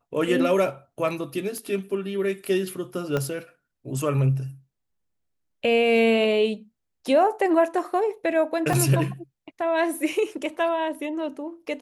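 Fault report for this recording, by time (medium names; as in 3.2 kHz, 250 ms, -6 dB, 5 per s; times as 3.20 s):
1.58 s: pop -23 dBFS
3.17 s: pop -13 dBFS
8.73 s: dropout 3.6 ms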